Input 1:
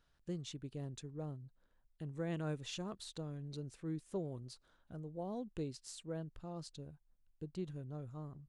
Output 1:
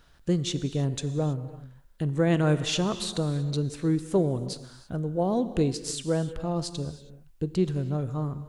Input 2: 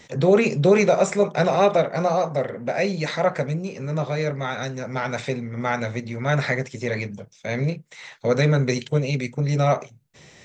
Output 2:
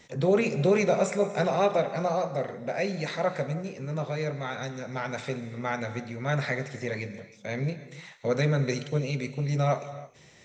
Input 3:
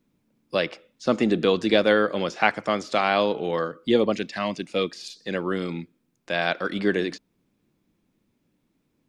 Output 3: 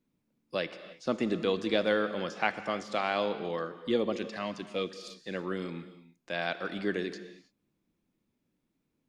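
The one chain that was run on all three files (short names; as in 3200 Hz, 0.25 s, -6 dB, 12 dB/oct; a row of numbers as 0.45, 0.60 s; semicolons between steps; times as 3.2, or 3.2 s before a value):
non-linear reverb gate 0.35 s flat, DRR 11.5 dB; normalise peaks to -12 dBFS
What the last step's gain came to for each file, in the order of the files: +16.5, -6.5, -8.5 dB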